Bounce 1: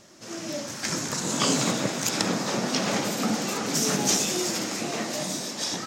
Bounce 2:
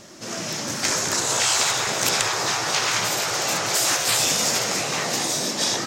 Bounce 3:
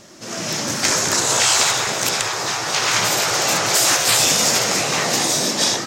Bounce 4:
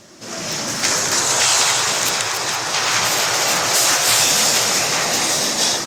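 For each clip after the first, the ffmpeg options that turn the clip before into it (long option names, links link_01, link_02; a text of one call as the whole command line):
ffmpeg -i in.wav -af "afftfilt=real='re*lt(hypot(re,im),0.112)':imag='im*lt(hypot(re,im),0.112)':win_size=1024:overlap=0.75,volume=8dB" out.wav
ffmpeg -i in.wav -af "dynaudnorm=framelen=270:gausssize=3:maxgain=6dB" out.wav
ffmpeg -i in.wav -filter_complex "[0:a]acrossover=split=560[link_01][link_02];[link_01]asoftclip=type=tanh:threshold=-26.5dB[link_03];[link_02]aecho=1:1:284|463:0.473|0.282[link_04];[link_03][link_04]amix=inputs=2:normalize=0" -ar 48000 -c:a libopus -b:a 48k out.opus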